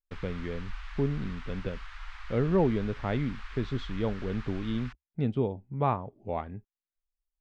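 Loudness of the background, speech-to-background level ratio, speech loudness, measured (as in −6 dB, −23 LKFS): −45.5 LKFS, 13.5 dB, −32.0 LKFS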